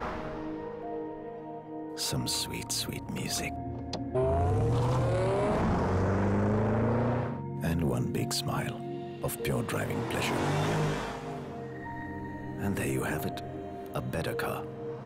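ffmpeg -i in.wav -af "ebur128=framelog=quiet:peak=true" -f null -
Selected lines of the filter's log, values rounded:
Integrated loudness:
  I:         -31.5 LUFS
  Threshold: -41.6 LUFS
Loudness range:
  LRA:         6.2 LU
  Threshold: -51.0 LUFS
  LRA low:   -34.6 LUFS
  LRA high:  -28.4 LUFS
True peak:
  Peak:      -20.4 dBFS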